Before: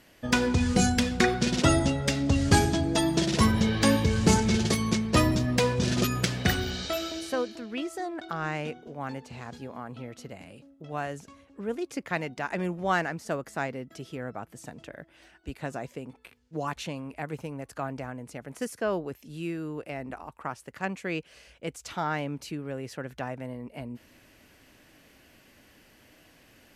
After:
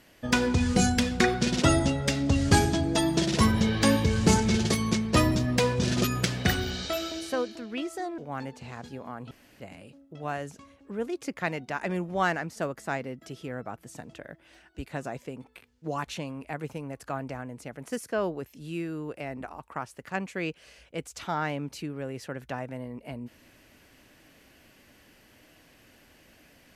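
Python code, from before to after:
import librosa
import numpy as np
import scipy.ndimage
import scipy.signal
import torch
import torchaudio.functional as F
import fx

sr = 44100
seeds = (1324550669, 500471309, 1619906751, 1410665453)

y = fx.edit(x, sr, fx.cut(start_s=8.18, length_s=0.69),
    fx.room_tone_fill(start_s=10.0, length_s=0.29), tone=tone)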